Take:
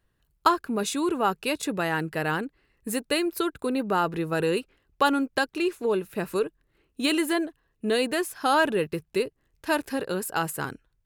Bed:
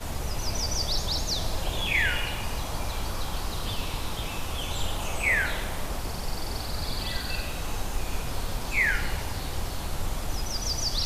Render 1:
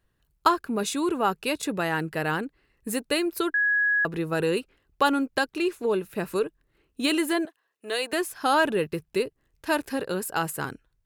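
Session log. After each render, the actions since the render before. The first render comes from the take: 3.54–4.05 bleep 1670 Hz -19.5 dBFS; 7.45–8.13 HPF 620 Hz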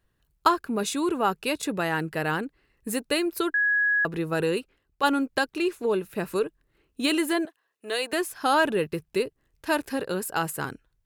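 4.42–5.03 fade out, to -7.5 dB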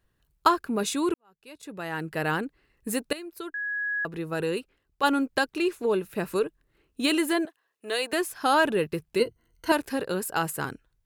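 1.14–2.24 fade in quadratic; 3.13–5.19 fade in, from -15.5 dB; 9.19–9.72 ripple EQ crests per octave 1.9, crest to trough 15 dB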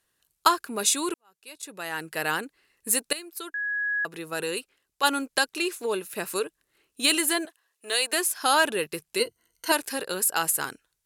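LPF 11000 Hz 12 dB/oct; RIAA curve recording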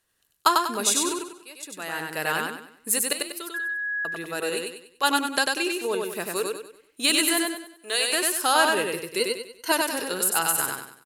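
feedback echo 96 ms, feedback 37%, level -3 dB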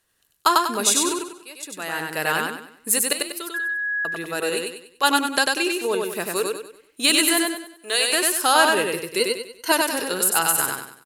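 gain +3.5 dB; limiter -3 dBFS, peak gain reduction 3 dB

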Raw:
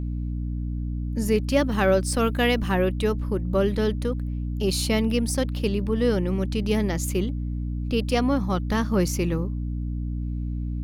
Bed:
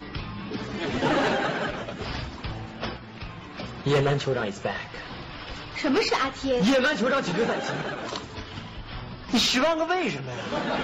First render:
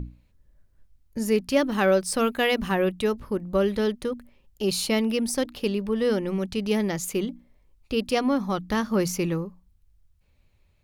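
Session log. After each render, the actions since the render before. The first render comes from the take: notches 60/120/180/240/300 Hz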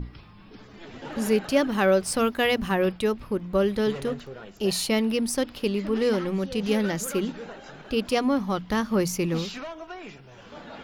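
add bed -14.5 dB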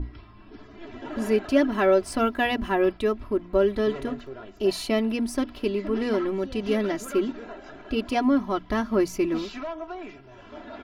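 high shelf 3400 Hz -12 dB; comb 3 ms, depth 78%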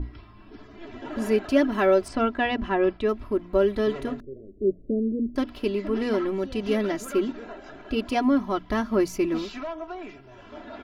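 2.08–3.09 air absorption 120 m; 4.2–5.36 steep low-pass 540 Hz 72 dB/oct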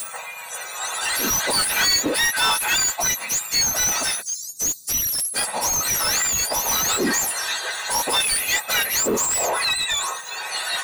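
spectrum mirrored in octaves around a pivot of 1600 Hz; overdrive pedal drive 31 dB, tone 5300 Hz, clips at -11 dBFS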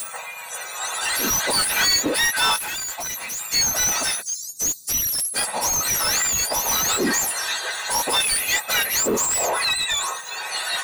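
2.56–3.41 overloaded stage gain 27.5 dB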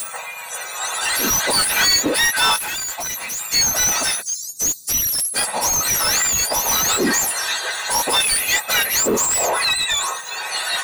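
gain +3 dB

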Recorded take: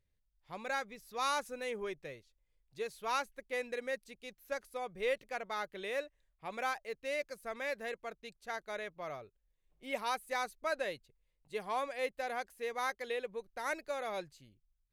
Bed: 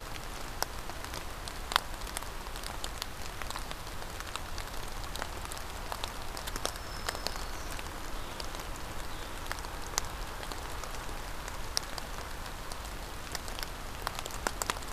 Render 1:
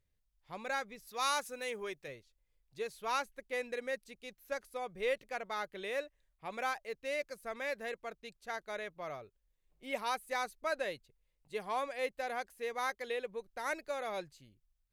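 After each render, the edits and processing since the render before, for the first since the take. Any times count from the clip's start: 1.07–2.08 tilt +1.5 dB/oct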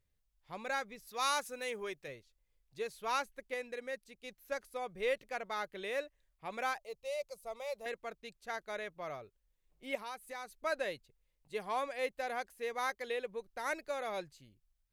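3.54–4.24 gain -3.5 dB; 6.78–7.86 fixed phaser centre 690 Hz, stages 4; 9.95–10.51 compressor 2:1, threshold -47 dBFS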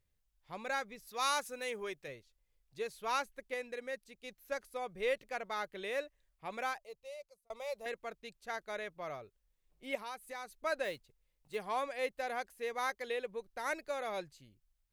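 6.51–7.5 fade out; 10.84–11.57 block floating point 5-bit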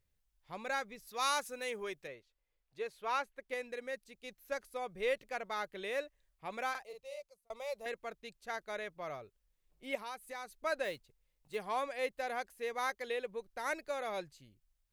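2.07–3.49 tone controls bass -8 dB, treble -9 dB; 6.7–7.2 doubler 47 ms -4.5 dB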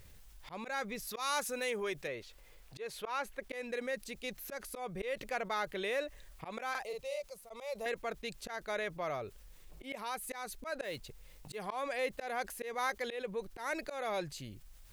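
auto swell 0.224 s; fast leveller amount 50%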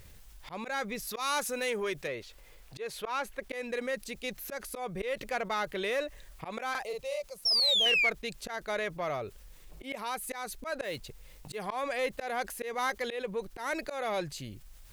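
7.45–8.1 painted sound fall 2100–5600 Hz -29 dBFS; in parallel at -4 dB: one-sided clip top -35.5 dBFS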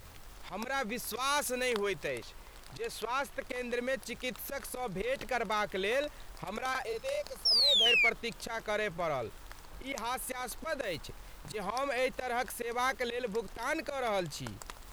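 add bed -13.5 dB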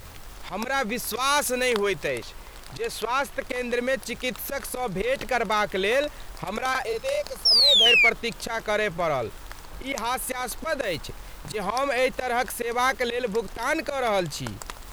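gain +8.5 dB

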